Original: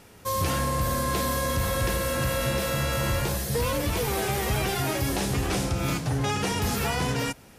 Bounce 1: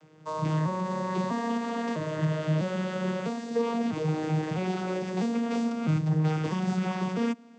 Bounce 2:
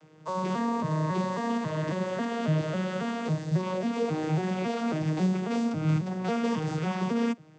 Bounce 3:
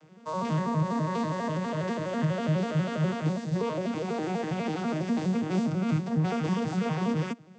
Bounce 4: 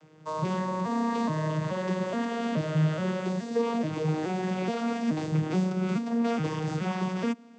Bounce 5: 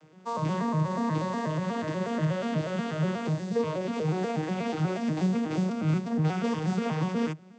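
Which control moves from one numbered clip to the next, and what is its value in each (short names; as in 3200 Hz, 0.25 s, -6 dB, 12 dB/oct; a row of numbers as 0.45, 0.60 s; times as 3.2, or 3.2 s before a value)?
arpeggiated vocoder, a note every: 651, 273, 82, 425, 121 ms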